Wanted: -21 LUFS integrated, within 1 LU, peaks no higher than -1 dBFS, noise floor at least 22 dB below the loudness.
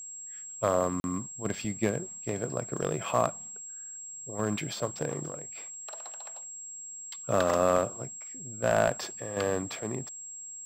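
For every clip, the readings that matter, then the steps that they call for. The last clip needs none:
dropouts 1; longest dropout 41 ms; steady tone 7600 Hz; tone level -40 dBFS; loudness -32.0 LUFS; peak -8.0 dBFS; loudness target -21.0 LUFS
-> interpolate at 1, 41 ms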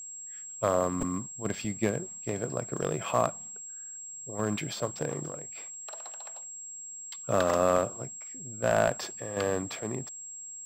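dropouts 0; steady tone 7600 Hz; tone level -40 dBFS
-> notch 7600 Hz, Q 30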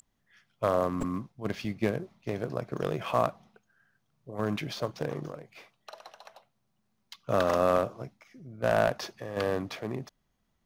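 steady tone none; loudness -31.0 LUFS; peak -8.0 dBFS; loudness target -21.0 LUFS
-> gain +10 dB; limiter -1 dBFS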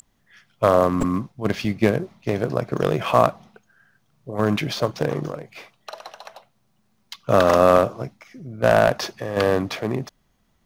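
loudness -21.0 LUFS; peak -1.0 dBFS; noise floor -66 dBFS

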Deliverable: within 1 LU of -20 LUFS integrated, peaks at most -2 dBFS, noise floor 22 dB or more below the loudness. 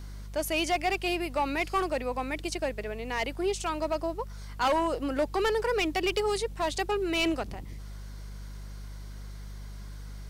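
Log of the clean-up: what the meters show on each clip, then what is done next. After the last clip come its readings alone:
clipped 0.9%; flat tops at -21.0 dBFS; hum 50 Hz; harmonics up to 200 Hz; hum level -39 dBFS; loudness -29.5 LUFS; peak -21.0 dBFS; loudness target -20.0 LUFS
-> clip repair -21 dBFS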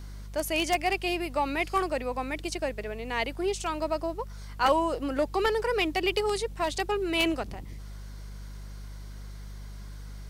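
clipped 0.0%; hum 50 Hz; harmonics up to 200 Hz; hum level -38 dBFS
-> de-hum 50 Hz, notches 4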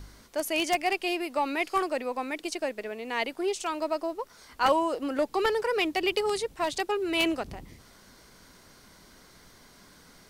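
hum none; loudness -29.0 LUFS; peak -11.5 dBFS; loudness target -20.0 LUFS
-> gain +9 dB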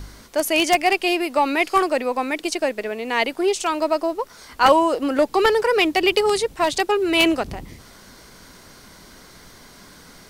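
loudness -20.0 LUFS; peak -2.5 dBFS; noise floor -46 dBFS

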